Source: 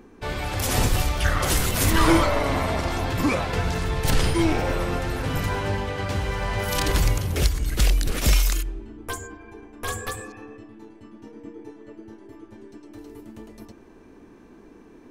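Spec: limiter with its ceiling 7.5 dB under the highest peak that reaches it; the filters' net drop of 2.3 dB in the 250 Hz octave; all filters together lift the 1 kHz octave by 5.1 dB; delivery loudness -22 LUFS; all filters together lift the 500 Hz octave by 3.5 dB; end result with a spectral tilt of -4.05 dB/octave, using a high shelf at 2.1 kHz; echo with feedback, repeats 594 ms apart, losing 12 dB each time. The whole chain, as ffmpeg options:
-af "equalizer=f=250:t=o:g=-6,equalizer=f=500:t=o:g=4.5,equalizer=f=1000:t=o:g=4.5,highshelf=f=2100:g=3.5,alimiter=limit=0.266:level=0:latency=1,aecho=1:1:594|1188|1782:0.251|0.0628|0.0157,volume=1.19"

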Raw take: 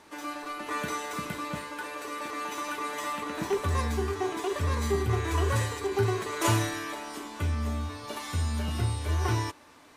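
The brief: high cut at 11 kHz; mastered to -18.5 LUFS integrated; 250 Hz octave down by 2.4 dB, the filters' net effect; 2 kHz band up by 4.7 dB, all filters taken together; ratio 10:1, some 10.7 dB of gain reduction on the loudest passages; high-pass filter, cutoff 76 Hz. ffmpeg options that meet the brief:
-af "highpass=76,lowpass=11000,equalizer=f=250:t=o:g=-3.5,equalizer=f=2000:t=o:g=6,acompressor=threshold=0.0251:ratio=10,volume=7.5"

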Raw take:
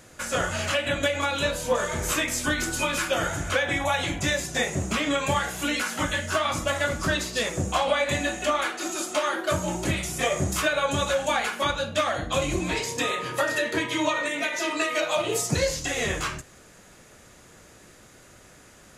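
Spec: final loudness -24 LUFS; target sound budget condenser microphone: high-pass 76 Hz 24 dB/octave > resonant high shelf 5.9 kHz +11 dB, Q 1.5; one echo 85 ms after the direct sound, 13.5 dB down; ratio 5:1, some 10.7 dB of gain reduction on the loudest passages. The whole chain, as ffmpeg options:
-af "acompressor=threshold=0.0282:ratio=5,highpass=f=76:w=0.5412,highpass=f=76:w=1.3066,highshelf=f=5900:t=q:w=1.5:g=11,aecho=1:1:85:0.211,volume=1.78"

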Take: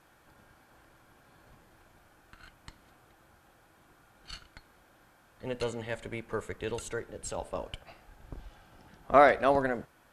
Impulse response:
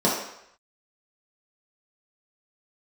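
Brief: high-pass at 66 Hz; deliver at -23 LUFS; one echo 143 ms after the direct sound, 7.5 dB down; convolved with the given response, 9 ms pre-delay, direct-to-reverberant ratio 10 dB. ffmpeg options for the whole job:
-filter_complex "[0:a]highpass=66,aecho=1:1:143:0.422,asplit=2[s0][s1];[1:a]atrim=start_sample=2205,adelay=9[s2];[s1][s2]afir=irnorm=-1:irlink=0,volume=0.0473[s3];[s0][s3]amix=inputs=2:normalize=0,volume=1.78"

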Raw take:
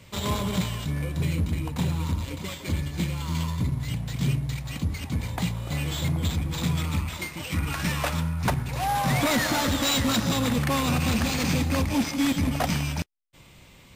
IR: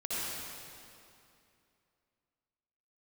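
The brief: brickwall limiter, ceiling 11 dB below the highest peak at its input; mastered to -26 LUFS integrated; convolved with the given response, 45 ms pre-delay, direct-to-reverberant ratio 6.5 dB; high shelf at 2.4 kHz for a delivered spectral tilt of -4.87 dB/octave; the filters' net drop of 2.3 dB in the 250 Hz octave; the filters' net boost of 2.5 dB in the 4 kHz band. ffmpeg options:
-filter_complex "[0:a]equalizer=f=250:t=o:g=-3,highshelf=f=2400:g=-5.5,equalizer=f=4000:t=o:g=7.5,alimiter=level_in=1.19:limit=0.0631:level=0:latency=1,volume=0.841,asplit=2[s0][s1];[1:a]atrim=start_sample=2205,adelay=45[s2];[s1][s2]afir=irnorm=-1:irlink=0,volume=0.237[s3];[s0][s3]amix=inputs=2:normalize=0,volume=2.11"

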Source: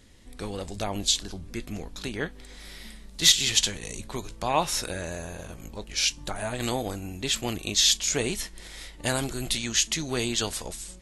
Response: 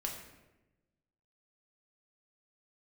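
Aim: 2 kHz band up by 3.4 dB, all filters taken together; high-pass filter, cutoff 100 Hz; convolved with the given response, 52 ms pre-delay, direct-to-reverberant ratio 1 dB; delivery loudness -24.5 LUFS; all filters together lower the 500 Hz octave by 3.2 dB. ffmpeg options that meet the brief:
-filter_complex "[0:a]highpass=100,equalizer=f=500:t=o:g=-4.5,equalizer=f=2000:t=o:g=4.5,asplit=2[s0][s1];[1:a]atrim=start_sample=2205,adelay=52[s2];[s1][s2]afir=irnorm=-1:irlink=0,volume=0.794[s3];[s0][s3]amix=inputs=2:normalize=0,volume=0.841"

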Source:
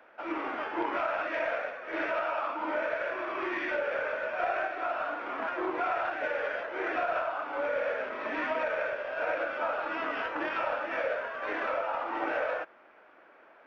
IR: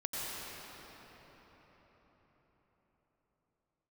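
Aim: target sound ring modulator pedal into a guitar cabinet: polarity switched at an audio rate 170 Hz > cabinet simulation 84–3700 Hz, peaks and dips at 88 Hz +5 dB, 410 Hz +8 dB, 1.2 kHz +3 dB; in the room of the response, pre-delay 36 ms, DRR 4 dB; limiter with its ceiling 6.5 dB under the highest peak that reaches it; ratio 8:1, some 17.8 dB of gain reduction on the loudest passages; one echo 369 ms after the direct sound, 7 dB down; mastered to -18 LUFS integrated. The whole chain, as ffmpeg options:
-filter_complex "[0:a]acompressor=threshold=0.00501:ratio=8,alimiter=level_in=7.5:limit=0.0631:level=0:latency=1,volume=0.133,aecho=1:1:369:0.447,asplit=2[s0][s1];[1:a]atrim=start_sample=2205,adelay=36[s2];[s1][s2]afir=irnorm=-1:irlink=0,volume=0.376[s3];[s0][s3]amix=inputs=2:normalize=0,aeval=exprs='val(0)*sgn(sin(2*PI*170*n/s))':c=same,highpass=84,equalizer=f=88:t=q:w=4:g=5,equalizer=f=410:t=q:w=4:g=8,equalizer=f=1200:t=q:w=4:g=3,lowpass=f=3700:w=0.5412,lowpass=f=3700:w=1.3066,volume=25.1"

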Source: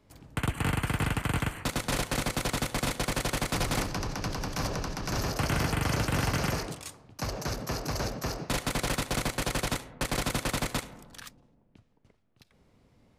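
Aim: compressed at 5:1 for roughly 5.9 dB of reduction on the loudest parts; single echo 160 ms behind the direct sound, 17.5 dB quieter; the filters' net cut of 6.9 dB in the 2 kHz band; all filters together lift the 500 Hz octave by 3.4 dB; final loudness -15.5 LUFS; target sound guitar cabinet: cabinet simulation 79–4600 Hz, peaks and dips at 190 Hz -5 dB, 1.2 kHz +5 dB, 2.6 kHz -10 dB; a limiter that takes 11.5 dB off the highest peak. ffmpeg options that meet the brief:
-af "equalizer=f=500:t=o:g=4.5,equalizer=f=2000:t=o:g=-8,acompressor=threshold=0.0282:ratio=5,alimiter=level_in=2.51:limit=0.0631:level=0:latency=1,volume=0.398,highpass=79,equalizer=f=190:t=q:w=4:g=-5,equalizer=f=1200:t=q:w=4:g=5,equalizer=f=2600:t=q:w=4:g=-10,lowpass=f=4600:w=0.5412,lowpass=f=4600:w=1.3066,aecho=1:1:160:0.133,volume=23.7"

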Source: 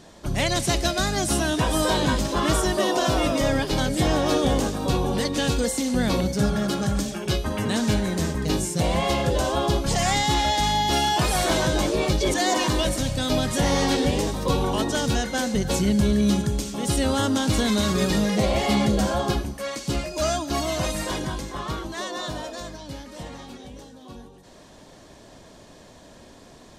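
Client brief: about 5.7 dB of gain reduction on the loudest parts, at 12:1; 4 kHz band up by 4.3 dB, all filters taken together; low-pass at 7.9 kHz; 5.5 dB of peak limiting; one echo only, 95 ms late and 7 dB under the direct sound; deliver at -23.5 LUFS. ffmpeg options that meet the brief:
-af "lowpass=7900,equalizer=f=4000:t=o:g=5.5,acompressor=threshold=0.0794:ratio=12,alimiter=limit=0.112:level=0:latency=1,aecho=1:1:95:0.447,volume=1.58"

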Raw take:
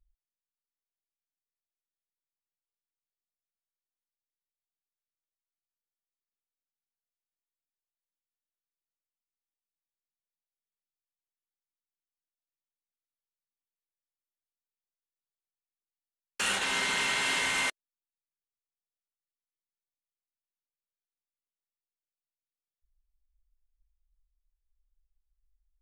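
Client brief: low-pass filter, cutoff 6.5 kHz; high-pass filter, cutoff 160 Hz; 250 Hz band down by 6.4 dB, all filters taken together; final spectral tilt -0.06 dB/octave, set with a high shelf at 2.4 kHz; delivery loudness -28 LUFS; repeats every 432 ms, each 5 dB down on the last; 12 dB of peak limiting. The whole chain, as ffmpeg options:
-af "highpass=160,lowpass=6500,equalizer=f=250:t=o:g=-7,highshelf=f=2400:g=-5.5,alimiter=level_in=2.51:limit=0.0631:level=0:latency=1,volume=0.398,aecho=1:1:432|864|1296|1728|2160|2592|3024:0.562|0.315|0.176|0.0988|0.0553|0.031|0.0173,volume=3.76"

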